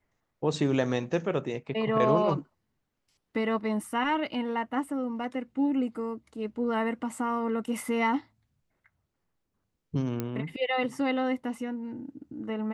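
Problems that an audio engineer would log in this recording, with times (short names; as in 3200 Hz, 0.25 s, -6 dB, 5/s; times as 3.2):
10.2 pop -17 dBFS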